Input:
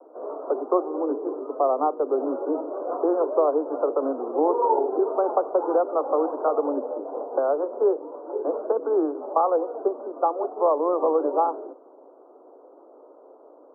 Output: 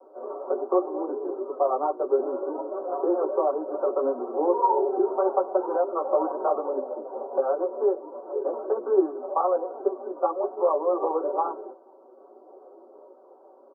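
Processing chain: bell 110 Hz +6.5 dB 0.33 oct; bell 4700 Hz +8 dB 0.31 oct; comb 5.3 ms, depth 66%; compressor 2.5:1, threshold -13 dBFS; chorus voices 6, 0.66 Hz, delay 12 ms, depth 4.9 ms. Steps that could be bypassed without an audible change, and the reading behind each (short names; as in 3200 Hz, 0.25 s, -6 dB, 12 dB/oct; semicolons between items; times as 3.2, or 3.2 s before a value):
bell 110 Hz: input band starts at 230 Hz; bell 4700 Hz: input band ends at 1400 Hz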